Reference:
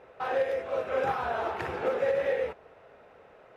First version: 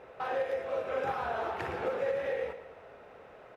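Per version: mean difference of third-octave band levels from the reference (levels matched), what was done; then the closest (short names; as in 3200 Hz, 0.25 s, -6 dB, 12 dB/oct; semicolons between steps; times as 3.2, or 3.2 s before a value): 2.5 dB: compressor 1.5:1, threshold -43 dBFS, peak gain reduction 7.5 dB; feedback echo 0.114 s, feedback 48%, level -11 dB; gain +2 dB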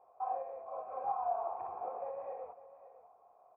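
9.5 dB: vocal tract filter a; echo 0.55 s -15 dB; gain +2 dB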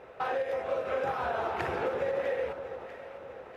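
4.0 dB: compressor, threshold -32 dBFS, peak gain reduction 9 dB; echo with dull and thin repeats by turns 0.324 s, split 1200 Hz, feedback 70%, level -9 dB; gain +3.5 dB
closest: first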